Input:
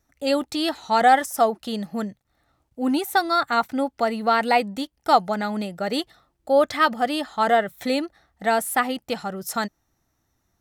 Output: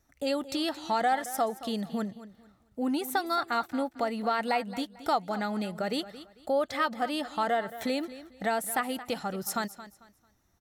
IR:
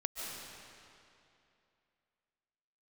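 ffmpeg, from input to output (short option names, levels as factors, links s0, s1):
-af "acompressor=threshold=0.0251:ratio=2,aecho=1:1:223|446|669:0.178|0.048|0.013"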